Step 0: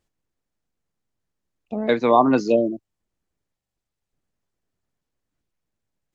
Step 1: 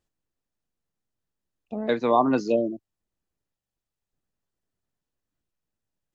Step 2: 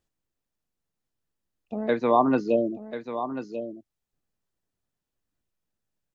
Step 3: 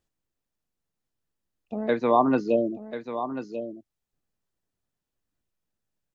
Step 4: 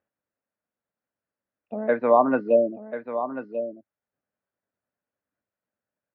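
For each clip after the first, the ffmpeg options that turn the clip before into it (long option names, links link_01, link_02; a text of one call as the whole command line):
ffmpeg -i in.wav -af "bandreject=frequency=2200:width=15,volume=-4.5dB" out.wav
ffmpeg -i in.wav -filter_complex "[0:a]aecho=1:1:1040:0.299,acrossover=split=3500[link_01][link_02];[link_02]acompressor=threshold=-57dB:ratio=4:attack=1:release=60[link_03];[link_01][link_03]amix=inputs=2:normalize=0" out.wav
ffmpeg -i in.wav -af anull out.wav
ffmpeg -i in.wav -af "highpass=140,equalizer=frequency=150:width_type=q:width=4:gain=-8,equalizer=frequency=350:width_type=q:width=4:gain=-5,equalizer=frequency=580:width_type=q:width=4:gain=7,equalizer=frequency=1500:width_type=q:width=4:gain=5,lowpass=frequency=2300:width=0.5412,lowpass=frequency=2300:width=1.3066" out.wav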